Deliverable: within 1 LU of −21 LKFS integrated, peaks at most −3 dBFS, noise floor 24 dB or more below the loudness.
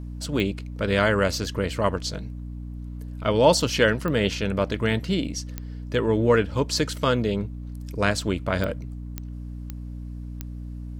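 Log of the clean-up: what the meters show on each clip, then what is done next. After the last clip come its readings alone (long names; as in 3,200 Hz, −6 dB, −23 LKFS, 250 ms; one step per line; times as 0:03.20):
number of clicks 7; mains hum 60 Hz; hum harmonics up to 300 Hz; level of the hum −32 dBFS; integrated loudness −24.0 LKFS; sample peak −5.0 dBFS; target loudness −21.0 LKFS
→ click removal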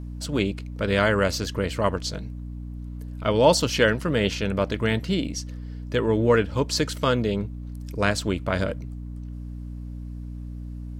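number of clicks 0; mains hum 60 Hz; hum harmonics up to 300 Hz; level of the hum −32 dBFS
→ mains-hum notches 60/120/180/240/300 Hz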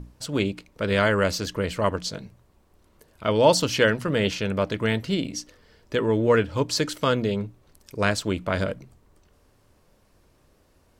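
mains hum none found; integrated loudness −24.5 LKFS; sample peak −5.0 dBFS; target loudness −21.0 LKFS
→ level +3.5 dB
brickwall limiter −3 dBFS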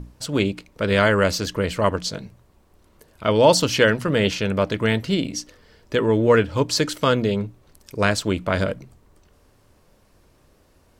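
integrated loudness −21.0 LKFS; sample peak −3.0 dBFS; background noise floor −58 dBFS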